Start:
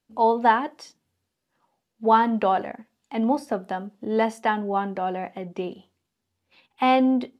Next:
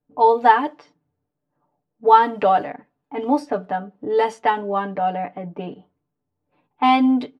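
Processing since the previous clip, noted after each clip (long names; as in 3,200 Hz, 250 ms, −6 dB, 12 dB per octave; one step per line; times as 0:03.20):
low-pass that shuts in the quiet parts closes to 790 Hz, open at −17.5 dBFS
comb filter 6.8 ms, depth 93%
level +1 dB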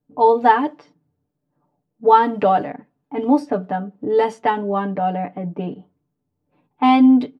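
parametric band 180 Hz +8 dB 2.5 octaves
level −1.5 dB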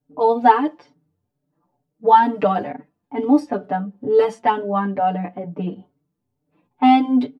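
barber-pole flanger 5 ms +2.2 Hz
level +2.5 dB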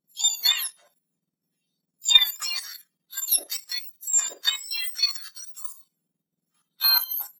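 frequency axis turned over on the octave scale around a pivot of 1,800 Hz
output level in coarse steps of 10 dB
harmonic generator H 4 −35 dB, 7 −42 dB, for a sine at −4.5 dBFS
level +2 dB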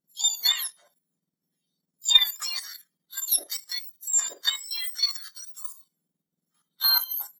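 Butterworth band-reject 2,600 Hz, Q 5.5
level −1.5 dB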